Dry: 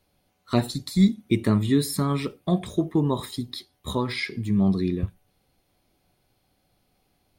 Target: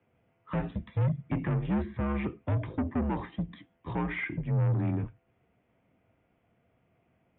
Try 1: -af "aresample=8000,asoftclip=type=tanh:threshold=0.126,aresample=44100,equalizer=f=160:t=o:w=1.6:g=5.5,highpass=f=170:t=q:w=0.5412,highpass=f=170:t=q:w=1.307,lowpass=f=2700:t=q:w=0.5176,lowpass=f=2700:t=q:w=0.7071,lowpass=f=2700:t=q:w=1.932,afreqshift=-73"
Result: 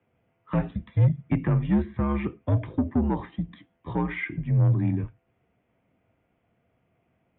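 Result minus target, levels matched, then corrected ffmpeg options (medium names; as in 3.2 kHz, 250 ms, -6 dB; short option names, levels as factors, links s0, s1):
saturation: distortion -7 dB
-af "aresample=8000,asoftclip=type=tanh:threshold=0.0447,aresample=44100,equalizer=f=160:t=o:w=1.6:g=5.5,highpass=f=170:t=q:w=0.5412,highpass=f=170:t=q:w=1.307,lowpass=f=2700:t=q:w=0.5176,lowpass=f=2700:t=q:w=0.7071,lowpass=f=2700:t=q:w=1.932,afreqshift=-73"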